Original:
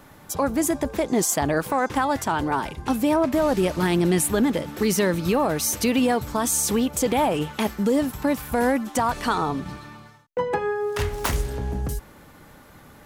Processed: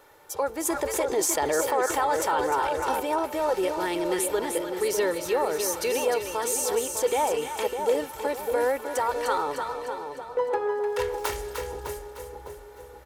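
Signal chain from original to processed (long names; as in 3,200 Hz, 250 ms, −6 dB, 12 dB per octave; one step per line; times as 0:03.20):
low shelf with overshoot 300 Hz −11.5 dB, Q 1.5
comb filter 2.2 ms, depth 45%
echo with a time of its own for lows and highs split 930 Hz, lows 604 ms, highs 303 ms, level −6 dB
0:00.65–0:03.00: envelope flattener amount 50%
level −6 dB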